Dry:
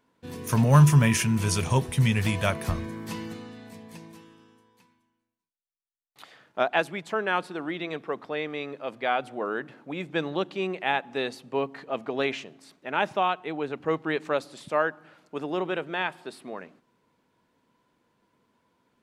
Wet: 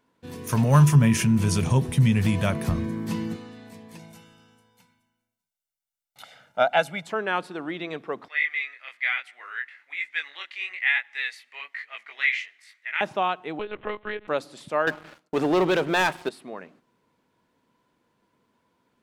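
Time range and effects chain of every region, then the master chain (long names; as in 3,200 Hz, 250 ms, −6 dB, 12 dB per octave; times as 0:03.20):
0:00.95–0:03.36: parametric band 180 Hz +9 dB 2 octaves + downward compressor 1.5 to 1, threshold −21 dBFS
0:03.99–0:07.07: high-shelf EQ 4,700 Hz +4 dB + notch filter 4,500 Hz, Q 29 + comb filter 1.4 ms, depth 75%
0:08.28–0:13.01: chorus effect 1.1 Hz, delay 18 ms, depth 6.4 ms + high-pass with resonance 2,000 Hz, resonance Q 8.9
0:13.59–0:14.28: one-pitch LPC vocoder at 8 kHz 210 Hz + low-shelf EQ 370 Hz −11.5 dB + multiband upward and downward compressor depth 100%
0:14.87–0:16.29: downward expander −57 dBFS + leveller curve on the samples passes 3
whole clip: no processing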